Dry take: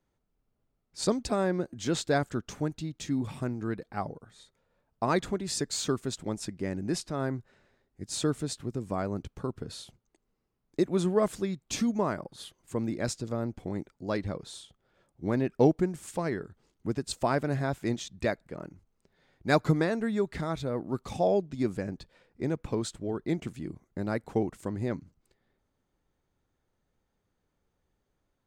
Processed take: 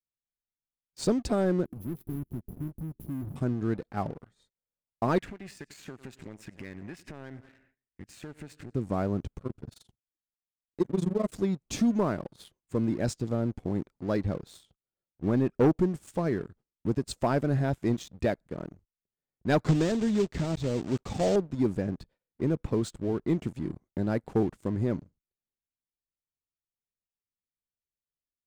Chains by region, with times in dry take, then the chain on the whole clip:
1.65–3.36 s: square wave that keeps the level + brick-wall FIR band-stop 410–10000 Hz + compression 2.5:1, threshold -42 dBFS
5.18–8.75 s: feedback delay 94 ms, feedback 58%, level -21 dB + compression 5:1, threshold -43 dBFS + high-order bell 2.1 kHz +14.5 dB 1.1 oct
9.38–11.32 s: AM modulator 23 Hz, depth 85% + Shepard-style phaser rising 1.1 Hz
19.64–21.36 s: block-companded coder 3-bit + steep low-pass 8.4 kHz 72 dB/octave + dynamic bell 1.2 kHz, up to -7 dB, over -41 dBFS, Q 0.79
whole clip: gate -56 dBFS, range -21 dB; tilt shelf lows +4 dB, about 750 Hz; waveshaping leveller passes 2; trim -6.5 dB

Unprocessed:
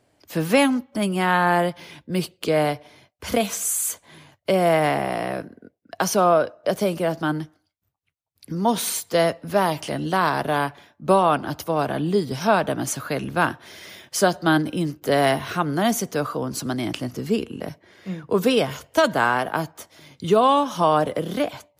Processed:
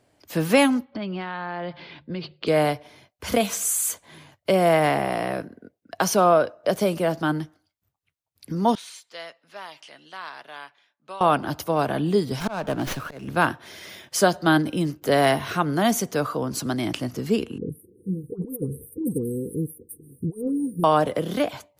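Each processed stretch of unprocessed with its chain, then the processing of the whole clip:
0.85–2.47 s: elliptic low-pass 4.5 kHz, stop band 70 dB + hum notches 50/100/150 Hz + compression 12:1, threshold -26 dBFS
8.75–11.21 s: low-pass 3.1 kHz + differentiator
12.40–13.28 s: slow attack 271 ms + sliding maximum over 5 samples
17.58–20.84 s: brick-wall FIR band-stop 510–8200 Hz + compressor with a negative ratio -26 dBFS, ratio -0.5 + phase dispersion highs, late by 117 ms, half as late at 1.4 kHz
whole clip: none

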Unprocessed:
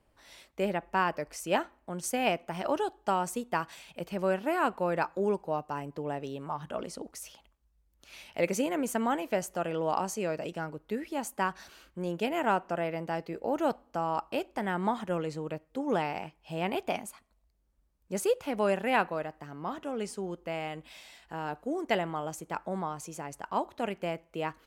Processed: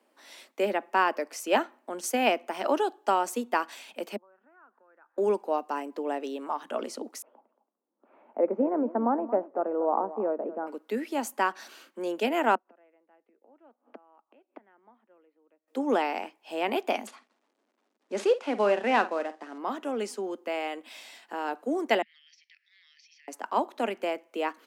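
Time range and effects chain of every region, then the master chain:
4.16–5.18 s: compression 3:1, threshold -38 dBFS + inverted gate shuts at -44 dBFS, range -28 dB + touch-sensitive low-pass 690–2100 Hz down, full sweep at -52.5 dBFS
7.22–10.67 s: low-pass 1.1 kHz 24 dB/octave + delay 227 ms -15 dB
12.55–15.68 s: low-pass 2.6 kHz 24 dB/octave + inverted gate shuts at -33 dBFS, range -33 dB
17.07–19.58 s: CVSD coder 64 kbps + distance through air 88 m + doubling 49 ms -13.5 dB
22.02–23.28 s: Chebyshev band-pass 1.8–5.6 kHz, order 5 + compression, threshold -59 dBFS
whole clip: steep high-pass 220 Hz 72 dB/octave; dynamic bell 8.9 kHz, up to -4 dB, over -57 dBFS, Q 2.2; trim +4 dB

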